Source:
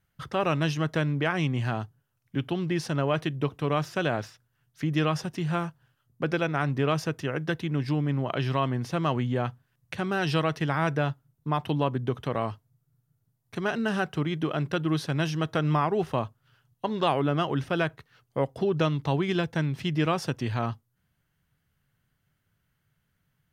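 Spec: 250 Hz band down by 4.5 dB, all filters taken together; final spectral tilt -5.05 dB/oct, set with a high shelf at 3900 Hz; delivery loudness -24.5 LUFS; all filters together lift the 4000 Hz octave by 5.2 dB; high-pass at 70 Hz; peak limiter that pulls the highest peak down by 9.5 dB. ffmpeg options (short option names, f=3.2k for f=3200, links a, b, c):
-af "highpass=70,equalizer=f=250:t=o:g=-7.5,highshelf=f=3.9k:g=6.5,equalizer=f=4k:t=o:g=3.5,volume=8dB,alimiter=limit=-11.5dB:level=0:latency=1"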